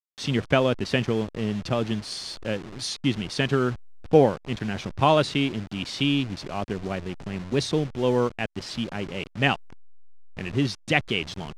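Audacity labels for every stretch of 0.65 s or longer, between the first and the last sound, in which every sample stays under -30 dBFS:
9.550000	10.390000	silence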